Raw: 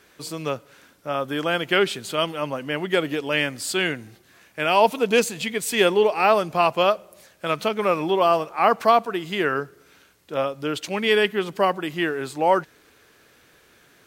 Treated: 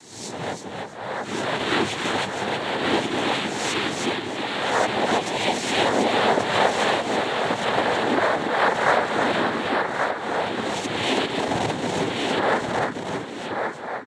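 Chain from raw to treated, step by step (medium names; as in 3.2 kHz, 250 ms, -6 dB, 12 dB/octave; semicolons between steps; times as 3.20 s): reverse spectral sustain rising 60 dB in 0.73 s; feedback delay 321 ms, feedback 23%, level -4 dB; in parallel at -2 dB: compression, threshold -29 dBFS, peak gain reduction 18.5 dB; 4.69–5.26 s: on the sum: treble shelf 3 kHz -11 dB; 11.39–12.10 s: sample-rate reducer 1.3 kHz, jitter 0%; noise-vocoded speech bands 6; band-stop 4.9 kHz, Q 17; on a send: delay 1130 ms -4.5 dB; on the sum: endings held to a fixed fall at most 170 dB/s; trim -6 dB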